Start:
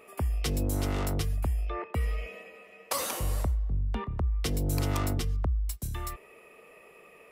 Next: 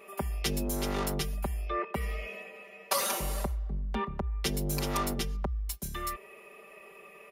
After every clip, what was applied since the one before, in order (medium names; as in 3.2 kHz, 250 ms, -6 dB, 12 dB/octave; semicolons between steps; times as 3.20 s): bass shelf 160 Hz -7.5 dB; band-stop 7.9 kHz, Q 7.6; comb 5.1 ms, depth 92%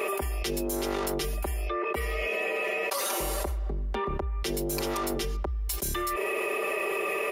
resonant low shelf 250 Hz -6 dB, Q 3; level flattener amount 100%; trim -4.5 dB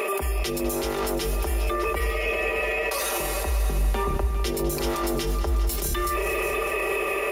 peak limiter -27 dBFS, peak gain reduction 10.5 dB; multi-head delay 201 ms, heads all three, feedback 46%, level -14 dB; trim +8.5 dB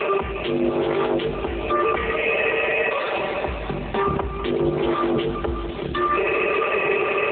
trim +7.5 dB; AMR-NB 7.4 kbps 8 kHz